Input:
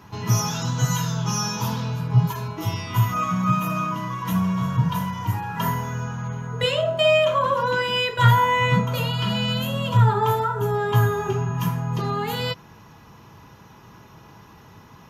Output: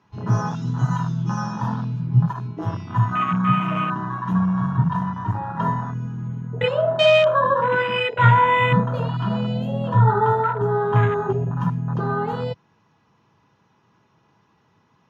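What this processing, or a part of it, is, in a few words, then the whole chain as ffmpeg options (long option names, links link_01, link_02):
over-cleaned archive recording: -af "highpass=110,lowpass=5400,afwtdn=0.0501,volume=3dB"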